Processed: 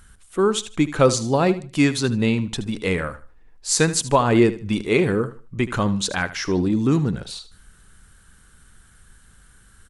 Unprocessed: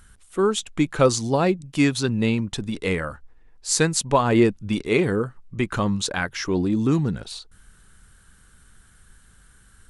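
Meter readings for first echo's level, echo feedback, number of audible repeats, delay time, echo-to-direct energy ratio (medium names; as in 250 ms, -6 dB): -15.0 dB, 26%, 2, 76 ms, -14.5 dB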